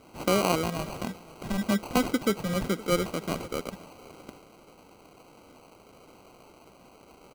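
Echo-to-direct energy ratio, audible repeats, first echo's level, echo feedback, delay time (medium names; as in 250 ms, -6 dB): -21.5 dB, 1, -21.5 dB, no regular repeats, 516 ms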